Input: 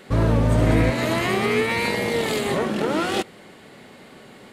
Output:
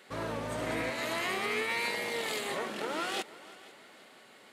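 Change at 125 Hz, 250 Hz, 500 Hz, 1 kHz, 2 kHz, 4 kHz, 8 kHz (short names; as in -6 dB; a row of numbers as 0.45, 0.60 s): -24.5, -17.5, -13.0, -9.5, -7.5, -7.0, -7.0 dB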